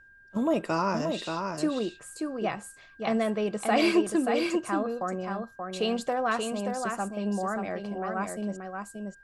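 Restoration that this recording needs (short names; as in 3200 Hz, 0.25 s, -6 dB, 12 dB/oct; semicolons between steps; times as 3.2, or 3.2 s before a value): notch 1600 Hz, Q 30; expander -41 dBFS, range -21 dB; inverse comb 0.58 s -5 dB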